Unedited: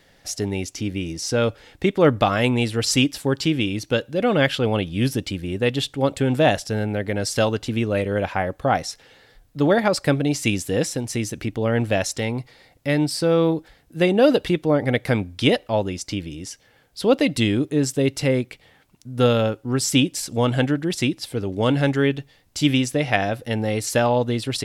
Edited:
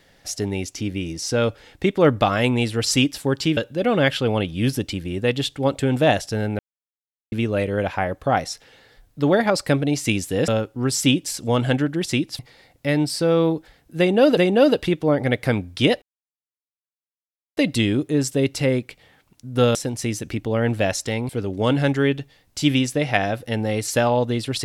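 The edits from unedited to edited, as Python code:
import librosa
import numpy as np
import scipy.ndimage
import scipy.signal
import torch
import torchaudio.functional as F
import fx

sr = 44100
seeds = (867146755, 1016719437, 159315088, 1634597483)

y = fx.edit(x, sr, fx.cut(start_s=3.57, length_s=0.38),
    fx.silence(start_s=6.97, length_s=0.73),
    fx.swap(start_s=10.86, length_s=1.54, other_s=19.37, other_length_s=1.91),
    fx.repeat(start_s=13.99, length_s=0.39, count=2),
    fx.silence(start_s=15.64, length_s=1.55), tone=tone)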